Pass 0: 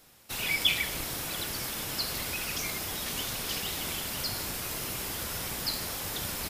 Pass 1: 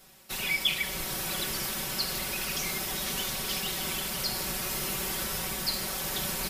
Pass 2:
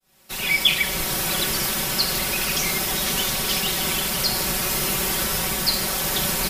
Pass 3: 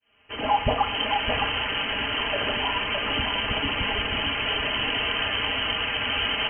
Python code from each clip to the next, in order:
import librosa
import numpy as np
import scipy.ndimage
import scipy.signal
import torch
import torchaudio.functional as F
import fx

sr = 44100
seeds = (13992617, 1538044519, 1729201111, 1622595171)

y1 = x + 0.74 * np.pad(x, (int(5.3 * sr / 1000.0), 0))[:len(x)]
y1 = fx.rider(y1, sr, range_db=3, speed_s=0.5)
y1 = y1 * 10.0 ** (-1.0 / 20.0)
y2 = fx.fade_in_head(y1, sr, length_s=0.59)
y2 = y2 * 10.0 ** (9.0 / 20.0)
y3 = y2 + 10.0 ** (-5.0 / 20.0) * np.pad(y2, (int(614 * sr / 1000.0), 0))[:len(y2)]
y3 = fx.freq_invert(y3, sr, carrier_hz=3100)